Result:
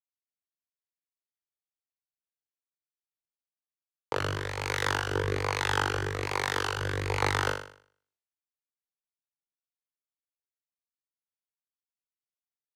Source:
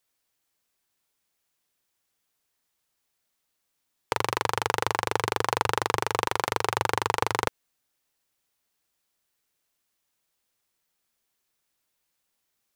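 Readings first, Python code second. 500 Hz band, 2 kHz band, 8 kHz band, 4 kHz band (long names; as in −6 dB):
−2.5 dB, 0.0 dB, −4.0 dB, −1.5 dB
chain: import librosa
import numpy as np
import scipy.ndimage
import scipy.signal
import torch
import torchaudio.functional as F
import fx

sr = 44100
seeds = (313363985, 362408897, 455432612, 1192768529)

y = fx.high_shelf(x, sr, hz=9600.0, db=-11.5)
y = fx.rotary(y, sr, hz=1.2)
y = fx.room_flutter(y, sr, wall_m=3.5, rt60_s=0.69)
y = fx.band_widen(y, sr, depth_pct=70)
y = y * 10.0 ** (-2.5 / 20.0)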